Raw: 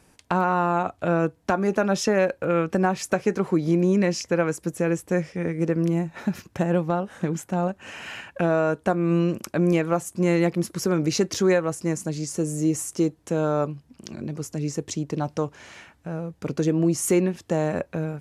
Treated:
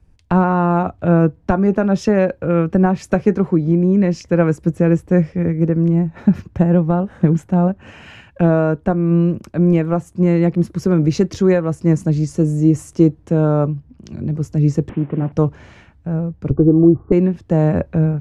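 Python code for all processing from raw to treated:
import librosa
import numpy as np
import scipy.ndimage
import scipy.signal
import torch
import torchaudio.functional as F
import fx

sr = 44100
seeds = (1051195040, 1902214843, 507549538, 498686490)

y = fx.chain(x, sr, fx.delta_mod(bps=16000, step_db=-40.5),
    fx.highpass(hz=170.0, slope=12), at=(14.89, 15.32))
y = fx.chain(y, sr, fx.steep_lowpass(hz=1300.0, slope=48),
    fx.low_shelf(hz=430.0, db=5.5),
    fx.comb(ms=2.6, depth=0.58), at=(16.5, 17.12))
y = fx.riaa(y, sr, side='playback')
y = fx.rider(y, sr, range_db=3, speed_s=0.5)
y = fx.band_widen(y, sr, depth_pct=40)
y = y * librosa.db_to_amplitude(2.0)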